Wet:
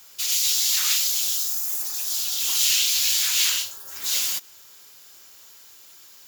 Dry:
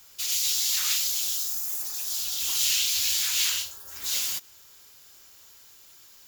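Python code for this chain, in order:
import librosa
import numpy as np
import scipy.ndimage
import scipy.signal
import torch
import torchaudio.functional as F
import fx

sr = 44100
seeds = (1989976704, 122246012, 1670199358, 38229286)

y = fx.highpass(x, sr, hz=170.0, slope=6)
y = y * 10.0 ** (4.0 / 20.0)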